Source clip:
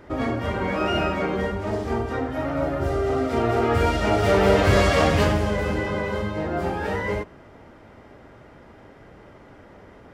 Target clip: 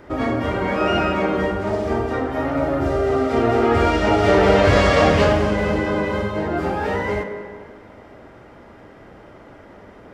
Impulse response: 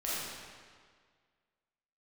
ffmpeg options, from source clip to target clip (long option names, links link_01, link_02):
-filter_complex "[0:a]asplit=2[link_01][link_02];[link_02]highpass=170[link_03];[1:a]atrim=start_sample=2205,highshelf=frequency=3700:gain=-10[link_04];[link_03][link_04]afir=irnorm=-1:irlink=0,volume=-9dB[link_05];[link_01][link_05]amix=inputs=2:normalize=0,acrossover=split=7800[link_06][link_07];[link_07]acompressor=threshold=-60dB:ratio=4:attack=1:release=60[link_08];[link_06][link_08]amix=inputs=2:normalize=0,volume=1.5dB"